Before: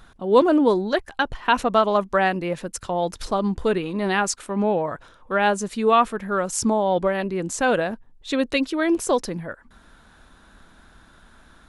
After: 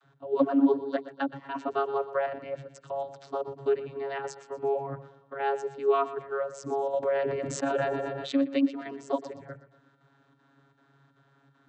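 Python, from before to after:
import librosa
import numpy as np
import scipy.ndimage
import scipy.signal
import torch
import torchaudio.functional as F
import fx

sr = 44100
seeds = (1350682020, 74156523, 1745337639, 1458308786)

y = fx.chopper(x, sr, hz=2.6, depth_pct=60, duty_pct=85)
y = fx.vocoder(y, sr, bands=32, carrier='saw', carrier_hz=138.0)
y = fx.echo_feedback(y, sr, ms=121, feedback_pct=43, wet_db=-14.5)
y = fx.sustainer(y, sr, db_per_s=23.0, at=(7.02, 8.42), fade=0.02)
y = y * 10.0 ** (-6.5 / 20.0)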